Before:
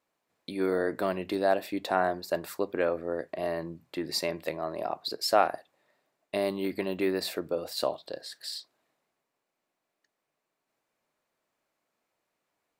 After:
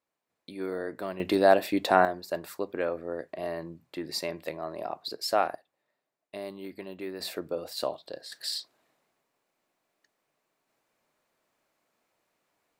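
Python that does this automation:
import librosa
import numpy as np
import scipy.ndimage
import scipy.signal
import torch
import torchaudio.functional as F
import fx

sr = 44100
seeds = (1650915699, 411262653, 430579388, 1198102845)

y = fx.gain(x, sr, db=fx.steps((0.0, -6.0), (1.2, 5.5), (2.05, -2.5), (5.55, -9.5), (7.2, -2.0), (8.32, 4.5)))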